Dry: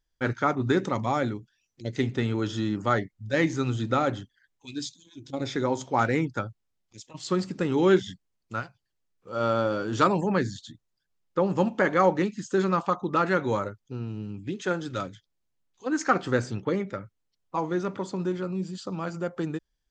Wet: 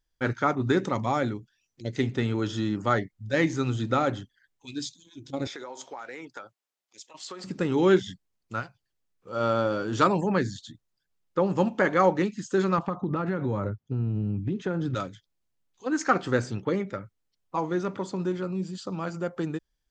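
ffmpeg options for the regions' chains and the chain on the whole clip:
ffmpeg -i in.wav -filter_complex "[0:a]asettb=1/sr,asplit=3[link_01][link_02][link_03];[link_01]atrim=end=5.474[link_04];[link_02]atrim=start=5.47:end=7.44,asetpts=PTS-STARTPTS,afade=type=in:duration=0.004:curve=qsin,afade=type=out:start_time=1.966:duration=0.004:curve=qsin,highpass=520,acompressor=threshold=-35dB:ratio=10:attack=3.2:release=140:knee=1:detection=peak[link_05];[link_03]atrim=start=7.436[link_06];[link_04][link_05]acrossfade=duration=0.004:curve1=hsin:curve2=qsin[link_07];[link_07][link_06]acrossfade=duration=0.004:curve1=qsin:curve2=hsin,asettb=1/sr,asplit=3[link_08][link_09][link_10];[link_08]atrim=end=12.784[link_11];[link_09]atrim=start=12.78:end=14.95,asetpts=PTS-STARTPTS,afade=type=in:duration=0.004:curve=qsin,afade=type=out:start_time=2.166:duration=0.004:curve=qsin,highpass=89,aemphasis=mode=reproduction:type=riaa,acompressor=threshold=-23dB:ratio=12:attack=3.2:release=140:knee=1:detection=peak[link_12];[link_10]atrim=start=14.946[link_13];[link_11][link_12]acrossfade=duration=0.004:curve1=hsin:curve2=qsin[link_14];[link_14][link_13]acrossfade=duration=0.004:curve1=qsin:curve2=hsin" out.wav

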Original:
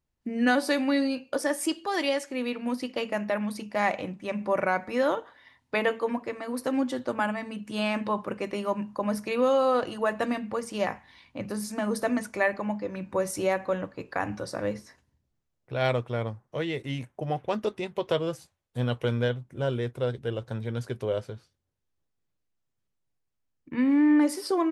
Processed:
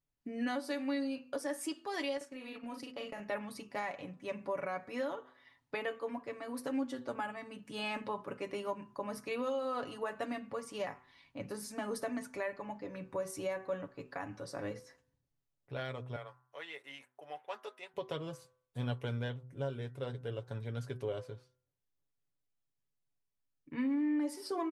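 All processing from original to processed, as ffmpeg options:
ffmpeg -i in.wav -filter_complex "[0:a]asettb=1/sr,asplit=3[link_01][link_02][link_03];[link_01]atrim=end=2.174[link_04];[link_02]atrim=start=2.17:end=3.2,asetpts=PTS-STARTPTS,afade=type=in:duration=0.004:curve=qsin,afade=type=out:start_time=1.026:duration=0.004:curve=qsin,asplit=2[link_05][link_06];[link_06]adelay=39,volume=-4.5dB[link_07];[link_05][link_07]amix=inputs=2:normalize=0,atrim=end_sample=45423,agate=range=-9dB:threshold=-37dB:ratio=16:release=100:detection=peak,acompressor=threshold=-32dB:ratio=3:attack=3.2:release=140:knee=1:detection=peak[link_08];[link_03]atrim=start=3.196[link_09];[link_04][link_08]acrossfade=duration=0.004:curve1=hsin:curve2=qsin[link_10];[link_10][link_09]acrossfade=duration=0.004:curve1=qsin:curve2=hsin,asettb=1/sr,asplit=3[link_11][link_12][link_13];[link_11]atrim=end=16.164[link_14];[link_12]atrim=start=16.16:end=17.94,asetpts=PTS-STARTPTS,afade=type=in:duration=0.004:curve=qsin,afade=type=out:start_time=1.776:duration=0.004:curve=qsin,highpass=860,equalizer=frequency=5500:width=0.72:gain=-5.5[link_15];[link_13]atrim=start=17.936[link_16];[link_14][link_15]acrossfade=duration=0.004:curve1=hsin:curve2=qsin[link_17];[link_17][link_16]acrossfade=duration=0.004:curve1=qsin:curve2=hsin,aecho=1:1:7.1:0.53,bandreject=frequency=126.6:width_type=h:width=4,bandreject=frequency=253.2:width_type=h:width=4,bandreject=frequency=379.8:width_type=h:width=4,bandreject=frequency=506.4:width_type=h:width=4,bandreject=frequency=633:width_type=h:width=4,bandreject=frequency=759.6:width_type=h:width=4,bandreject=frequency=886.2:width_type=h:width=4,bandreject=frequency=1012.8:width_type=h:width=4,bandreject=frequency=1139.4:width_type=h:width=4,bandreject=frequency=1266:width_type=h:width=4,bandreject=frequency=1392.6:width_type=h:width=4,bandreject=frequency=1519.2:width_type=h:width=4,bandreject=frequency=1645.8:width_type=h:width=4,bandreject=frequency=1772.4:width_type=h:width=4,bandreject=frequency=1899:width_type=h:width=4,alimiter=limit=-18.5dB:level=0:latency=1:release=423,volume=-8.5dB" out.wav

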